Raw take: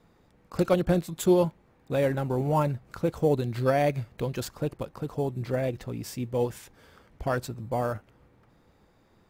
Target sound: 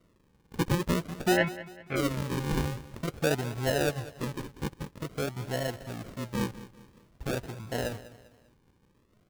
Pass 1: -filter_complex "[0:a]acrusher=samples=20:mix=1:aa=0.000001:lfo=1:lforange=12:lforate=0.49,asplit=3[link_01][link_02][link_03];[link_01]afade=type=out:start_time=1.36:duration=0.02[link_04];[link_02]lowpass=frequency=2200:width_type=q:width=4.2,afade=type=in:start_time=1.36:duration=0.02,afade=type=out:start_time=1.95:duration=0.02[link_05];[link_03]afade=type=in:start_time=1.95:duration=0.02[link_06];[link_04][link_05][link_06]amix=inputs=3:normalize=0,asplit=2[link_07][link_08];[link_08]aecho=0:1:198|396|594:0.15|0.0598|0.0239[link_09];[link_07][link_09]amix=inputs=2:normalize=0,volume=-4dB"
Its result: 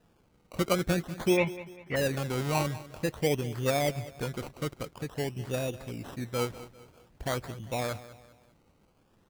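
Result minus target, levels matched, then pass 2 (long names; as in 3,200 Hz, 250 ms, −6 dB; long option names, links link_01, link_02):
sample-and-hold swept by an LFO: distortion −12 dB
-filter_complex "[0:a]acrusher=samples=52:mix=1:aa=0.000001:lfo=1:lforange=31.2:lforate=0.49,asplit=3[link_01][link_02][link_03];[link_01]afade=type=out:start_time=1.36:duration=0.02[link_04];[link_02]lowpass=frequency=2200:width_type=q:width=4.2,afade=type=in:start_time=1.36:duration=0.02,afade=type=out:start_time=1.95:duration=0.02[link_05];[link_03]afade=type=in:start_time=1.95:duration=0.02[link_06];[link_04][link_05][link_06]amix=inputs=3:normalize=0,asplit=2[link_07][link_08];[link_08]aecho=0:1:198|396|594:0.15|0.0598|0.0239[link_09];[link_07][link_09]amix=inputs=2:normalize=0,volume=-4dB"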